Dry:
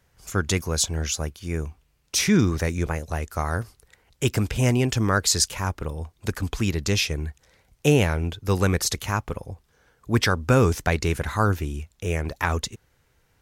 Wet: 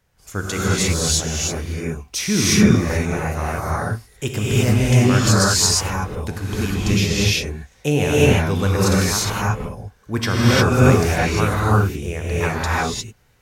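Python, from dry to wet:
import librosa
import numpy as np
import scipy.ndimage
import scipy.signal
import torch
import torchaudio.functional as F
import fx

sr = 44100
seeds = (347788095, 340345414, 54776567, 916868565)

y = fx.rev_gated(x, sr, seeds[0], gate_ms=380, shape='rising', drr_db=-7.5)
y = y * librosa.db_to_amplitude(-2.5)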